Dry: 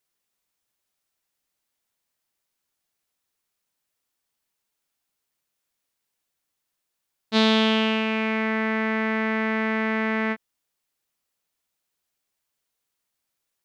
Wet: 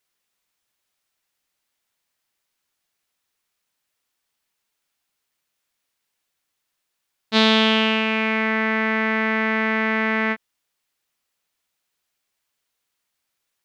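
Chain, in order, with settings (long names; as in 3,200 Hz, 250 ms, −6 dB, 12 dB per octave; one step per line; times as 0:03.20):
parametric band 2,300 Hz +4.5 dB 2.8 octaves
level +1 dB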